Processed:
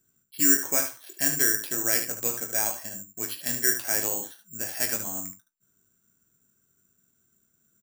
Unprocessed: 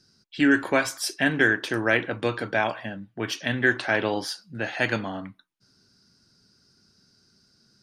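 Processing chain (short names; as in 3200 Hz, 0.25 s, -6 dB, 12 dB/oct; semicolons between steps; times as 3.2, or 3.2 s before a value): on a send: early reflections 21 ms -8 dB, 74 ms -8.5 dB; on the sum: careless resampling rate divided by 6×, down filtered, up zero stuff; gain -11 dB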